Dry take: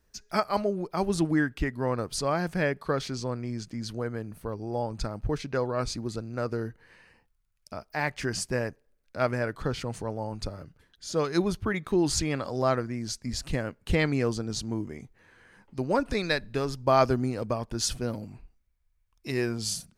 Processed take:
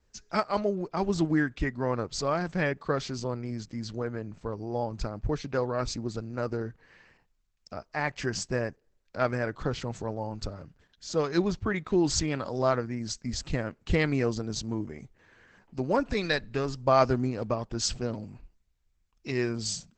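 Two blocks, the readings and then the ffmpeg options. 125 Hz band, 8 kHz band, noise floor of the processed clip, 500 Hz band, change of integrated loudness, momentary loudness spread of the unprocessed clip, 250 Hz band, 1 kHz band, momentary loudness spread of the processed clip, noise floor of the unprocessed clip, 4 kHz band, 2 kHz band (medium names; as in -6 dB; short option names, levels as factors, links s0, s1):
-0.5 dB, -1.5 dB, -72 dBFS, -0.5 dB, -0.5 dB, 10 LU, -0.5 dB, -0.5 dB, 11 LU, -70 dBFS, -1.0 dB, -0.5 dB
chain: -ar 48000 -c:a libopus -b:a 12k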